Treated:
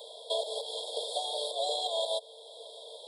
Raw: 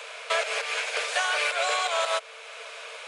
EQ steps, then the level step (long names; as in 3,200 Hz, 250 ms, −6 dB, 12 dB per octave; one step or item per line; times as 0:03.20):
linear-phase brick-wall band-stop 1,100–3,200 Hz
phaser with its sweep stopped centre 2,700 Hz, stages 4
+1.5 dB